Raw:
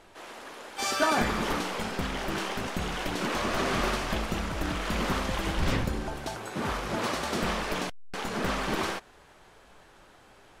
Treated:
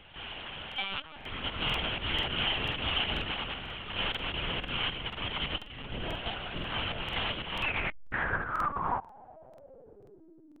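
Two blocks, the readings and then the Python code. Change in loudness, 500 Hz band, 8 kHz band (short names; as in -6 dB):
-2.5 dB, -9.0 dB, under -25 dB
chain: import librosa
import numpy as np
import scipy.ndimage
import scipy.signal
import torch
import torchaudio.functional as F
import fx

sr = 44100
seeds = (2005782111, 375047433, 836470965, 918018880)

y = fx.over_compress(x, sr, threshold_db=-32.0, ratio=-0.5)
y = fx.filter_sweep_lowpass(y, sr, from_hz=3000.0, to_hz=280.0, start_s=7.52, end_s=10.54, q=7.1)
y = fx.lpc_vocoder(y, sr, seeds[0], excitation='pitch_kept', order=10)
y = fx.buffer_crackle(y, sr, first_s=0.67, period_s=0.49, block=2048, kind='repeat')
y = y * 10.0 ** (-5.5 / 20.0)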